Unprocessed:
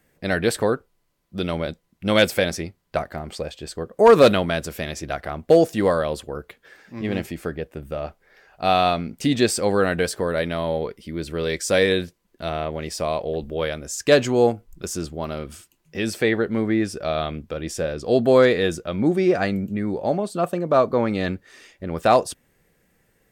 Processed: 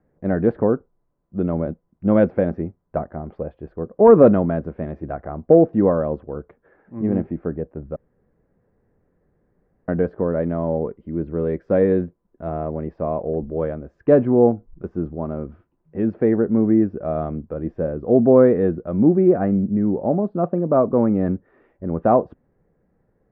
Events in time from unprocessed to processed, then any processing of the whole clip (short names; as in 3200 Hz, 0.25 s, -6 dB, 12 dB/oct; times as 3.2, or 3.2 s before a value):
7.96–9.88 room tone
whole clip: Bessel low-pass 860 Hz, order 4; dynamic EQ 230 Hz, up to +6 dB, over -35 dBFS, Q 1; gain +1 dB